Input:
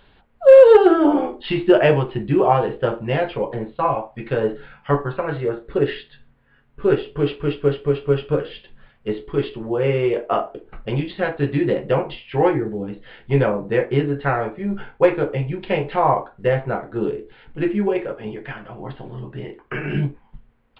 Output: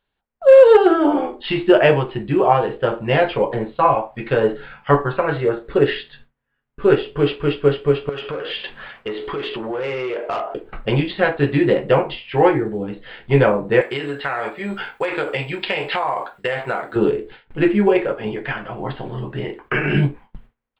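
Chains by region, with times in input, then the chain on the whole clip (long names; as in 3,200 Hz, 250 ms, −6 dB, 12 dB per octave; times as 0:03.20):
0:08.09–0:10.54: mid-hump overdrive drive 18 dB, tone 3,400 Hz, clips at −5.5 dBFS + downward compressor 5 to 1, threshold −31 dBFS
0:13.81–0:16.96: spectral tilt +3.5 dB per octave + downward compressor 12 to 1, threshold −24 dBFS
whole clip: noise gate with hold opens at −35 dBFS; low-shelf EQ 450 Hz −5 dB; automatic gain control gain up to 9 dB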